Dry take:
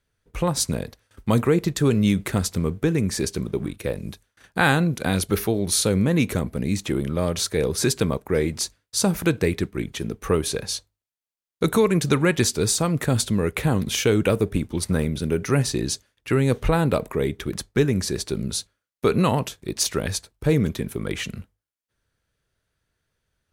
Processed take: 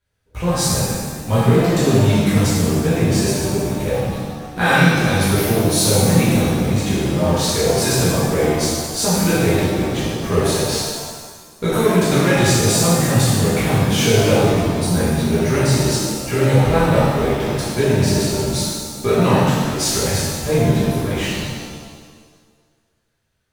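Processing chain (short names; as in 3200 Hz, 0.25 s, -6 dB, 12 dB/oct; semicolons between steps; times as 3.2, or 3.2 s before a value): in parallel at -12 dB: Schmitt trigger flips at -32.5 dBFS; on the sum: shimmer reverb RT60 1.6 s, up +7 st, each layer -8 dB, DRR -11 dB; gain -7 dB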